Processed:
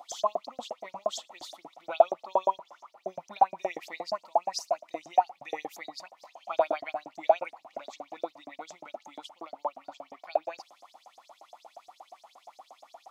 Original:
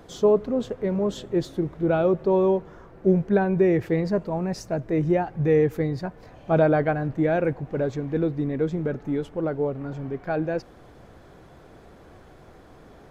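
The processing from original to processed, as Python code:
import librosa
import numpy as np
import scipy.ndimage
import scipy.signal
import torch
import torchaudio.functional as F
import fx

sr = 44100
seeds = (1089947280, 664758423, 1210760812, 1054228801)

y = fx.fixed_phaser(x, sr, hz=430.0, stages=6)
y = fx.filter_lfo_highpass(y, sr, shape='saw_up', hz=8.5, low_hz=590.0, high_hz=6900.0, q=6.6)
y = y * librosa.db_to_amplitude(-1.5)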